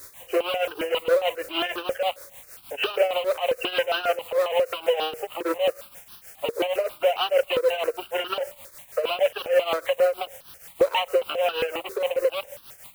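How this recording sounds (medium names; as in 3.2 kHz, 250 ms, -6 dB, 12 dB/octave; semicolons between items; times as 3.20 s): a quantiser's noise floor 8-bit, dither triangular; tremolo triangle 6.4 Hz, depth 80%; notches that jump at a steady rate 7.4 Hz 780–2100 Hz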